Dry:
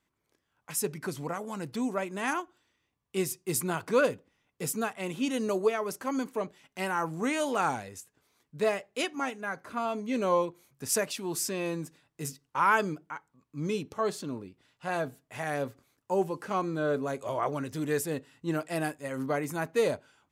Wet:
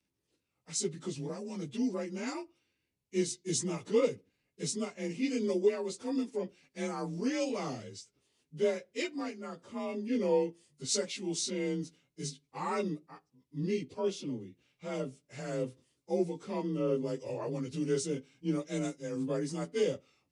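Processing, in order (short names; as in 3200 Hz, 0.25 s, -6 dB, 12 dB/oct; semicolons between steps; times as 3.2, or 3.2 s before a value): inharmonic rescaling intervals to 91%; band shelf 1100 Hz -10 dB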